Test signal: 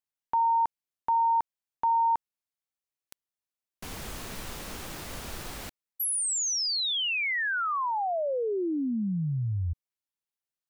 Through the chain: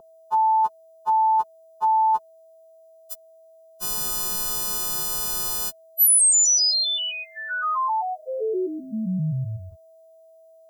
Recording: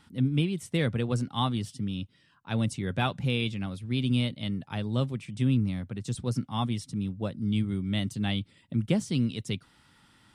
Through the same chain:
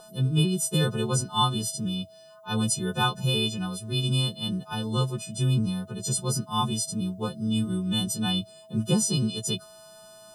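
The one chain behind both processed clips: frequency quantiser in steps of 3 st; whine 650 Hz -41 dBFS; fixed phaser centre 410 Hz, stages 8; gain +5.5 dB

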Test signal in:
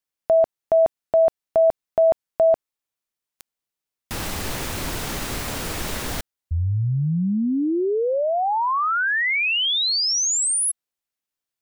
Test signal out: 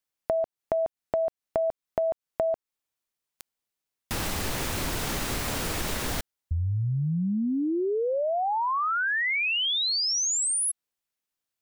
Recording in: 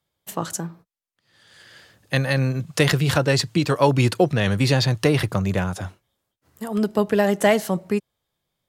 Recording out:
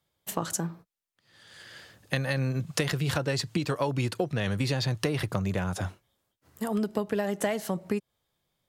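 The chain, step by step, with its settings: compressor 6:1, threshold -25 dBFS

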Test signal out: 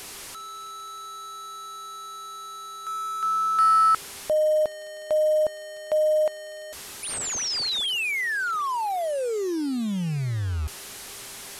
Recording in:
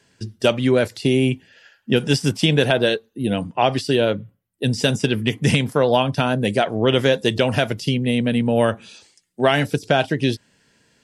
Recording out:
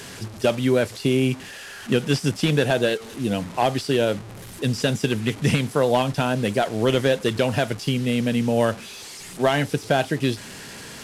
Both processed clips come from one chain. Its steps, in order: delta modulation 64 kbps, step -30 dBFS; buzz 400 Hz, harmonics 34, -54 dBFS -8 dB/oct; gain -2.5 dB

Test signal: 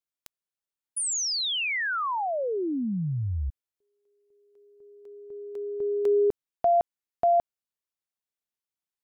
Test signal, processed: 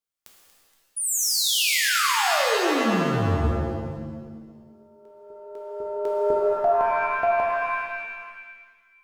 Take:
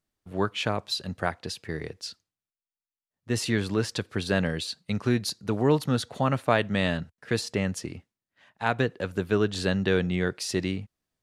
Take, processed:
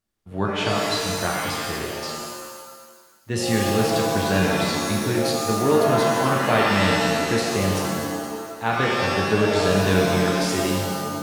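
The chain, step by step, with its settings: split-band echo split 1500 Hz, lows 94 ms, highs 0.236 s, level -14 dB; shimmer reverb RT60 1.5 s, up +7 st, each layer -2 dB, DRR -1.5 dB

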